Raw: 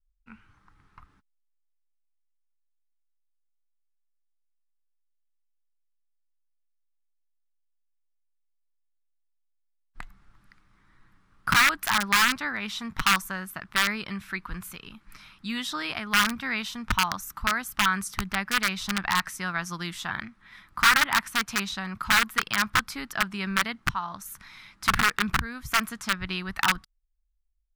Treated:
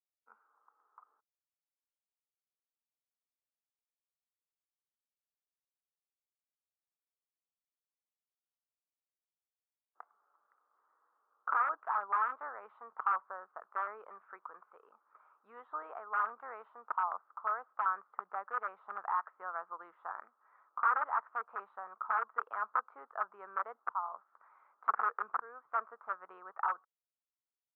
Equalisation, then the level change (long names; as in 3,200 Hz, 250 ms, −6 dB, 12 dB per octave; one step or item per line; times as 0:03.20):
elliptic band-pass filter 460–1,300 Hz, stop band 70 dB
high-frequency loss of the air 120 metres
−4.0 dB